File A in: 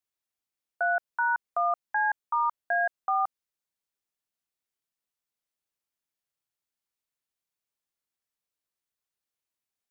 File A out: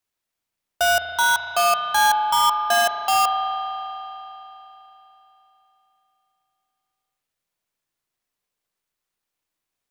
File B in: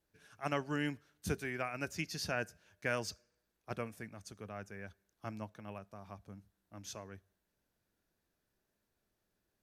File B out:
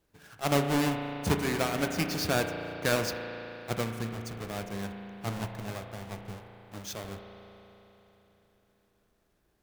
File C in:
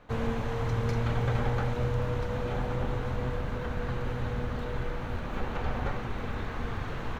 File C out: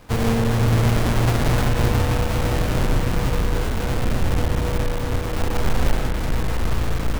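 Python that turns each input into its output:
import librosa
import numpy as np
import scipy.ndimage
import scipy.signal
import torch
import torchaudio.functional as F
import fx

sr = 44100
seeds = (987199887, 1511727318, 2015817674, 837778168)

y = fx.halfwave_hold(x, sr)
y = fx.rev_spring(y, sr, rt60_s=3.6, pass_ms=(35,), chirp_ms=45, drr_db=4.5)
y = y * librosa.db_to_amplitude(4.0)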